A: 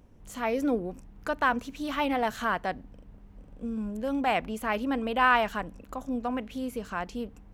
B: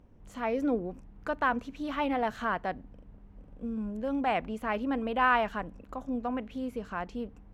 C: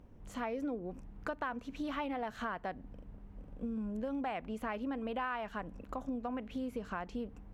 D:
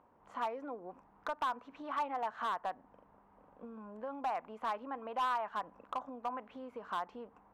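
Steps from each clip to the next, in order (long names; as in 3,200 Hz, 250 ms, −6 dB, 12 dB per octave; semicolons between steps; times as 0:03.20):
low-pass filter 2,300 Hz 6 dB per octave; level −1.5 dB
downward compressor 6 to 1, threshold −36 dBFS, peak gain reduction 15 dB; level +1 dB
resonant band-pass 1,000 Hz, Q 2.4; hard clipping −37 dBFS, distortion −15 dB; level +8 dB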